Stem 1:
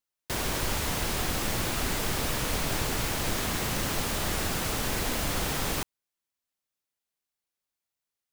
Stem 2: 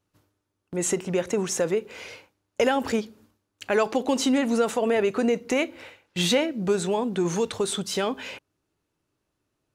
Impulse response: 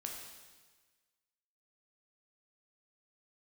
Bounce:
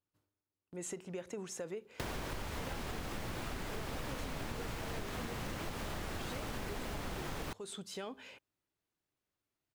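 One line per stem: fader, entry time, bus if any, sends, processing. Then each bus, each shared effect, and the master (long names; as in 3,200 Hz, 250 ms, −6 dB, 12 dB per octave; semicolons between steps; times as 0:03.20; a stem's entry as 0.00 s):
+1.5 dB, 1.70 s, no send, high-shelf EQ 4,100 Hz −11 dB
−16.0 dB, 0.00 s, no send, notch filter 5,800 Hz, Q 20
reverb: not used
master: downward compressor 10 to 1, threshold −37 dBFS, peak gain reduction 14.5 dB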